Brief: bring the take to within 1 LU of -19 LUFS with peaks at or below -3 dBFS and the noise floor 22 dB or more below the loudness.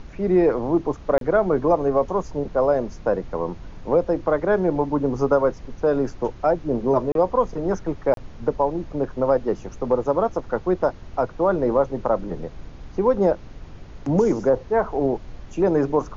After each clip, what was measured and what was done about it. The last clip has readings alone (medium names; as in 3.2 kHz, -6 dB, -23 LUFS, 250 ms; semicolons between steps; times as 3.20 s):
dropouts 3; longest dropout 32 ms; noise floor -41 dBFS; noise floor target -45 dBFS; loudness -22.5 LUFS; peak level -6.0 dBFS; loudness target -19.0 LUFS
-> interpolate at 1.18/7.12/8.14 s, 32 ms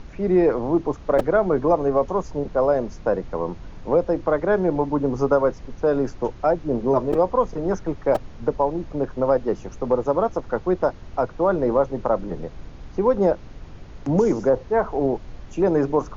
dropouts 0; noise floor -41 dBFS; noise floor target -45 dBFS
-> noise print and reduce 6 dB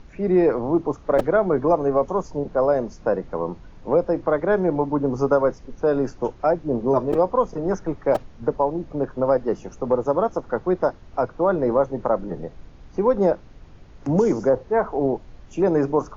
noise floor -46 dBFS; loudness -22.5 LUFS; peak level -5.5 dBFS; loudness target -19.0 LUFS
-> trim +3.5 dB; peak limiter -3 dBFS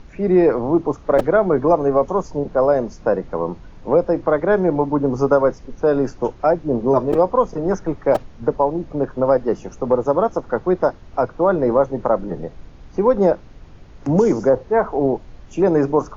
loudness -19.0 LUFS; peak level -3.0 dBFS; noise floor -42 dBFS